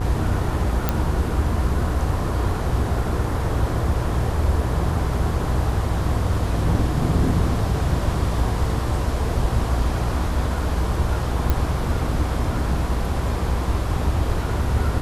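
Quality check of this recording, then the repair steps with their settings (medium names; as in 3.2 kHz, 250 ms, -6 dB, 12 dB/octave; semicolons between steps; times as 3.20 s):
buzz 60 Hz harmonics 27 -26 dBFS
0.89 s: pop -6 dBFS
11.50 s: pop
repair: de-click; de-hum 60 Hz, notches 27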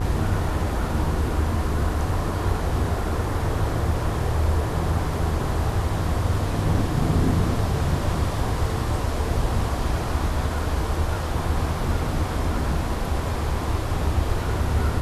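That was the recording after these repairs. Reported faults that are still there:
nothing left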